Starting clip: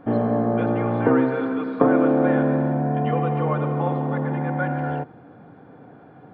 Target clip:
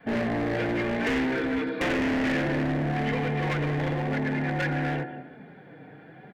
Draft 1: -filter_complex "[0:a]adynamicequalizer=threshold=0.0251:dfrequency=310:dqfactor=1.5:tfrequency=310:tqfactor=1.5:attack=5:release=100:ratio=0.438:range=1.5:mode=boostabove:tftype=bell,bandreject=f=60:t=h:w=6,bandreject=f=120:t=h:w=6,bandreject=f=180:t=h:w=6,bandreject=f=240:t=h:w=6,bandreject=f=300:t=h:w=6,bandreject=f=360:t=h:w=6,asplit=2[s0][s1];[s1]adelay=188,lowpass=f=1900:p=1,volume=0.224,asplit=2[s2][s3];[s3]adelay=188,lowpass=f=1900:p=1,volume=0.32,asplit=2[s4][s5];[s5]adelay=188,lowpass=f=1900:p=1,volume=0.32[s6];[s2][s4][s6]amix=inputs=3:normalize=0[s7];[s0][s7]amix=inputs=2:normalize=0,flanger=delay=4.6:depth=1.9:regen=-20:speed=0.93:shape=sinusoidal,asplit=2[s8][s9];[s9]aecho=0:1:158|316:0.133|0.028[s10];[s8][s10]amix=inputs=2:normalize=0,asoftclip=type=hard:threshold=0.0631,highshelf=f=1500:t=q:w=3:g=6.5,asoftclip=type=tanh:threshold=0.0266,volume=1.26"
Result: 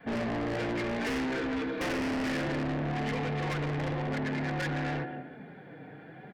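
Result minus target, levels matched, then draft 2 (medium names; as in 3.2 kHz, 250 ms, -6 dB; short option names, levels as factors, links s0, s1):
saturation: distortion +10 dB
-filter_complex "[0:a]adynamicequalizer=threshold=0.0251:dfrequency=310:dqfactor=1.5:tfrequency=310:tqfactor=1.5:attack=5:release=100:ratio=0.438:range=1.5:mode=boostabove:tftype=bell,bandreject=f=60:t=h:w=6,bandreject=f=120:t=h:w=6,bandreject=f=180:t=h:w=6,bandreject=f=240:t=h:w=6,bandreject=f=300:t=h:w=6,bandreject=f=360:t=h:w=6,asplit=2[s0][s1];[s1]adelay=188,lowpass=f=1900:p=1,volume=0.224,asplit=2[s2][s3];[s3]adelay=188,lowpass=f=1900:p=1,volume=0.32,asplit=2[s4][s5];[s5]adelay=188,lowpass=f=1900:p=1,volume=0.32[s6];[s2][s4][s6]amix=inputs=3:normalize=0[s7];[s0][s7]amix=inputs=2:normalize=0,flanger=delay=4.6:depth=1.9:regen=-20:speed=0.93:shape=sinusoidal,asplit=2[s8][s9];[s9]aecho=0:1:158|316:0.133|0.028[s10];[s8][s10]amix=inputs=2:normalize=0,asoftclip=type=hard:threshold=0.0631,highshelf=f=1500:t=q:w=3:g=6.5,asoftclip=type=tanh:threshold=0.075,volume=1.26"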